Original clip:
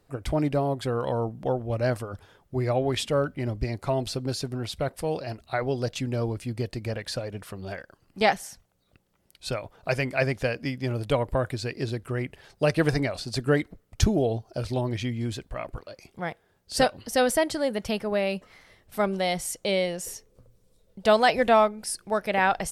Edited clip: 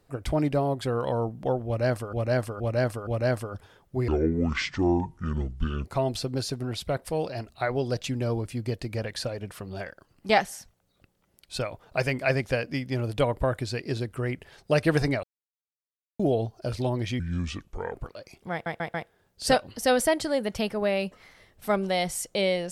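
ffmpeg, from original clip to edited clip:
-filter_complex "[0:a]asplit=13[s0][s1][s2][s3][s4][s5][s6][s7][s8][s9][s10][s11][s12];[s0]atrim=end=2.132[s13];[s1]atrim=start=1.658:end=2.132[s14];[s2]atrim=start=1.658:end=2.132[s15];[s3]atrim=start=1.658:end=2.674[s16];[s4]atrim=start=2.67:end=3.77,asetpts=PTS-STARTPTS,asetrate=27342,aresample=44100[s17];[s5]atrim=start=3.766:end=13.15,asetpts=PTS-STARTPTS,afade=t=out:st=9.38:d=0.004:c=hsin[s18];[s6]atrim=start=13.15:end=14.11,asetpts=PTS-STARTPTS,volume=0[s19];[s7]atrim=start=14.11:end=15.114,asetpts=PTS-STARTPTS,afade=t=in:d=0.004:c=hsin[s20];[s8]atrim=start=15.11:end=15.67,asetpts=PTS-STARTPTS,asetrate=32634,aresample=44100[s21];[s9]atrim=start=15.666:end=16.382[s22];[s10]atrim=start=16.238:end=16.382[s23];[s11]atrim=start=16.238:end=16.382[s24];[s12]atrim=start=16.238[s25];[s13][s14]acrossfade=d=0.004:c1=hsin:c2=hsin[s26];[s26][s15]acrossfade=d=0.004:c1=hsin:c2=hsin[s27];[s27][s16]acrossfade=d=0.004:c1=hsin:c2=hsin[s28];[s28][s17]acrossfade=d=0.004:c1=hsin:c2=hsin[s29];[s18][s19][s20]concat=n=3:v=0:a=1[s30];[s29][s30]acrossfade=d=0.004:c1=hsin:c2=hsin[s31];[s31][s21]acrossfade=d=0.004:c1=hsin:c2=hsin[s32];[s32][s22]acrossfade=d=0.004:c1=hsin:c2=hsin[s33];[s33][s23]acrossfade=d=0.004:c1=hsin:c2=hsin[s34];[s34][s24]acrossfade=d=0.004:c1=hsin:c2=hsin[s35];[s35][s25]acrossfade=d=0.004:c1=hsin:c2=hsin"

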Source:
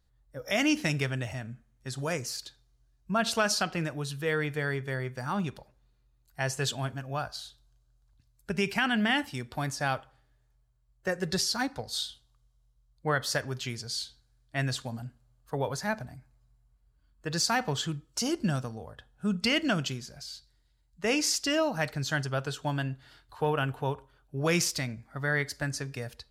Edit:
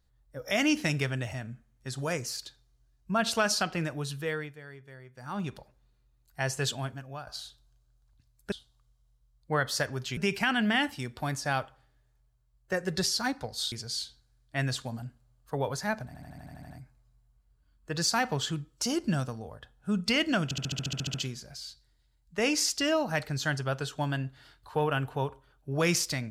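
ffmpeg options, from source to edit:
-filter_complex "[0:a]asplit=25[s0][s1][s2][s3][s4][s5][s6][s7][s8][s9][s10][s11][s12][s13][s14][s15][s16][s17][s18][s19][s20][s21][s22][s23][s24];[s0]atrim=end=4.56,asetpts=PTS-STARTPTS,afade=t=out:st=4.14:d=0.42:silence=0.158489[s25];[s1]atrim=start=4.56:end=5.13,asetpts=PTS-STARTPTS,volume=0.158[s26];[s2]atrim=start=5.13:end=7.27,asetpts=PTS-STARTPTS,afade=t=in:d=0.42:silence=0.158489,afade=t=out:st=1.55:d=0.59:silence=0.281838[s27];[s3]atrim=start=7.27:end=8.522,asetpts=PTS-STARTPTS,afade=t=in:d=0.004:c=hsin:silence=0.281838[s28];[s4]atrim=start=12.068:end=13.722[s29];[s5]atrim=start=8.518:end=12.072[s30];[s6]atrim=start=13.718:end=16.142[s31];[s7]atrim=start=16.058:end=16.142[s32];[s8]atrim=start=16.058:end=16.142[s33];[s9]atrim=start=16.058:end=16.142[s34];[s10]atrim=start=16.058:end=16.142[s35];[s11]atrim=start=16.058:end=16.142[s36];[s12]atrim=start=16.058:end=16.142[s37];[s13]atrim=start=16.058:end=16.142[s38];[s14]atrim=start=16.058:end=19.872[s39];[s15]atrim=start=19.798:end=19.872[s40];[s16]atrim=start=19.798:end=19.872[s41];[s17]atrim=start=19.798:end=19.872[s42];[s18]atrim=start=19.798:end=19.872[s43];[s19]atrim=start=19.798:end=19.872[s44];[s20]atrim=start=19.798:end=19.872[s45];[s21]atrim=start=19.798:end=19.872[s46];[s22]atrim=start=19.798:end=19.872[s47];[s23]atrim=start=19.798:end=19.872[s48];[s24]atrim=start=19.798[s49];[s25][s26][s27][s28]concat=n=4:v=0:a=1[s50];[s50][s29]acrossfade=d=0.004:c1=hsin:c2=hsin[s51];[s51][s30]acrossfade=d=0.004:c1=hsin:c2=hsin[s52];[s52][s31]acrossfade=d=0.004:c1=hsin:c2=hsin[s53];[s53][s32]acrossfade=d=0.004:c1=hsin:c2=hsin[s54];[s54][s33]acrossfade=d=0.004:c1=hsin:c2=hsin[s55];[s55][s34]acrossfade=d=0.004:c1=hsin:c2=hsin[s56];[s56][s35]acrossfade=d=0.004:c1=hsin:c2=hsin[s57];[s57][s36]acrossfade=d=0.004:c1=hsin:c2=hsin[s58];[s58][s37]acrossfade=d=0.004:c1=hsin:c2=hsin[s59];[s59][s38]acrossfade=d=0.004:c1=hsin:c2=hsin[s60];[s60][s39]acrossfade=d=0.004:c1=hsin:c2=hsin[s61];[s61][s40]acrossfade=d=0.004:c1=hsin:c2=hsin[s62];[s62][s41]acrossfade=d=0.004:c1=hsin:c2=hsin[s63];[s63][s42]acrossfade=d=0.004:c1=hsin:c2=hsin[s64];[s64][s43]acrossfade=d=0.004:c1=hsin:c2=hsin[s65];[s65][s44]acrossfade=d=0.004:c1=hsin:c2=hsin[s66];[s66][s45]acrossfade=d=0.004:c1=hsin:c2=hsin[s67];[s67][s46]acrossfade=d=0.004:c1=hsin:c2=hsin[s68];[s68][s47]acrossfade=d=0.004:c1=hsin:c2=hsin[s69];[s69][s48]acrossfade=d=0.004:c1=hsin:c2=hsin[s70];[s70][s49]acrossfade=d=0.004:c1=hsin:c2=hsin"

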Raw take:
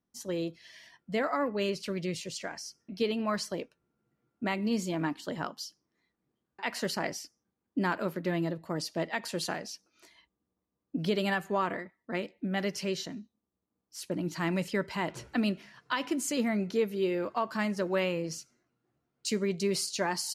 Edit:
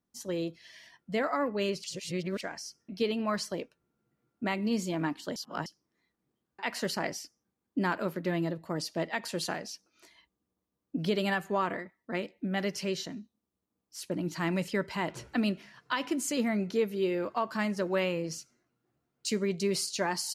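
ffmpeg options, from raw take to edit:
-filter_complex "[0:a]asplit=5[s0][s1][s2][s3][s4];[s0]atrim=end=1.842[s5];[s1]atrim=start=1.838:end=2.412,asetpts=PTS-STARTPTS,areverse[s6];[s2]atrim=start=2.408:end=5.362[s7];[s3]atrim=start=5.358:end=5.662,asetpts=PTS-STARTPTS,areverse[s8];[s4]atrim=start=5.658[s9];[s5][s6]acrossfade=d=0.004:c1=hsin:c2=hsin[s10];[s10][s7]acrossfade=d=0.004:c1=hsin:c2=hsin[s11];[s11][s8]acrossfade=d=0.004:c1=hsin:c2=hsin[s12];[s12][s9]acrossfade=d=0.004:c1=hsin:c2=hsin"

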